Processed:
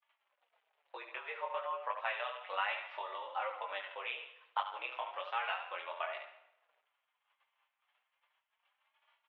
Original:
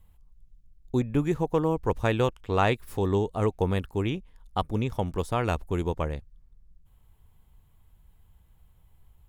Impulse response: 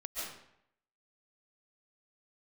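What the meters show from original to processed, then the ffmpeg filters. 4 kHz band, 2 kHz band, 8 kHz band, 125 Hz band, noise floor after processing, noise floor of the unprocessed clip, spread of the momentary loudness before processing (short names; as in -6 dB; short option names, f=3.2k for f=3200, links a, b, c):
-4.5 dB, -3.0 dB, under -30 dB, under -40 dB, -85 dBFS, -60 dBFS, 6 LU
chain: -filter_complex "[0:a]tiltshelf=f=1.4k:g=-7,aecho=1:1:71|142|213:0.355|0.0993|0.0278,acompressor=threshold=-40dB:ratio=6,flanger=delay=19:depth=5.6:speed=1.1,acrusher=bits=11:mix=0:aa=0.000001,flanger=delay=3.7:depth=4.8:regen=0:speed=0.33:shape=sinusoidal,agate=range=-33dB:threshold=-57dB:ratio=3:detection=peak,asplit=2[a][b];[1:a]atrim=start_sample=2205[c];[b][c]afir=irnorm=-1:irlink=0,volume=-16dB[d];[a][d]amix=inputs=2:normalize=0,highpass=f=570:t=q:w=0.5412,highpass=f=570:t=q:w=1.307,lowpass=f=2.9k:t=q:w=0.5176,lowpass=f=2.9k:t=q:w=0.7071,lowpass=f=2.9k:t=q:w=1.932,afreqshift=100,volume=14dB"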